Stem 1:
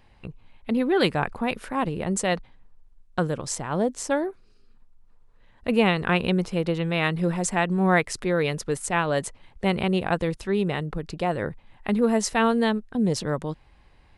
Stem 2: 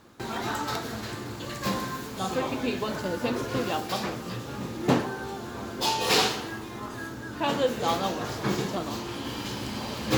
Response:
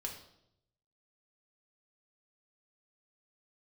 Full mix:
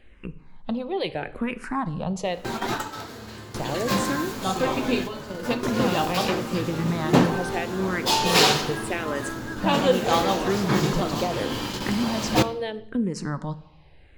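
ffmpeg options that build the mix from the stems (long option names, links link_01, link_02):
-filter_complex "[0:a]acompressor=threshold=-27dB:ratio=6,highshelf=frequency=8900:gain=-12,asplit=2[link_01][link_02];[link_02]afreqshift=-0.78[link_03];[link_01][link_03]amix=inputs=2:normalize=1,volume=3dB,asplit=3[link_04][link_05][link_06];[link_04]atrim=end=2.87,asetpts=PTS-STARTPTS,afade=type=out:start_time=2.866:duration=0.004:curve=hsin[link_07];[link_05]atrim=start=2.87:end=3.54,asetpts=PTS-STARTPTS,volume=0[link_08];[link_06]atrim=start=3.54,asetpts=PTS-STARTPTS,afade=type=in:duration=0.004:curve=hsin[link_09];[link_07][link_08][link_09]concat=n=3:v=0:a=1,asplit=3[link_10][link_11][link_12];[link_11]volume=-5.5dB[link_13];[1:a]adelay=2250,volume=2.5dB,asplit=2[link_14][link_15];[link_15]volume=-7dB[link_16];[link_12]apad=whole_len=548030[link_17];[link_14][link_17]sidechaingate=range=-33dB:threshold=-53dB:ratio=16:detection=peak[link_18];[2:a]atrim=start_sample=2205[link_19];[link_13][link_16]amix=inputs=2:normalize=0[link_20];[link_20][link_19]afir=irnorm=-1:irlink=0[link_21];[link_10][link_18][link_21]amix=inputs=3:normalize=0"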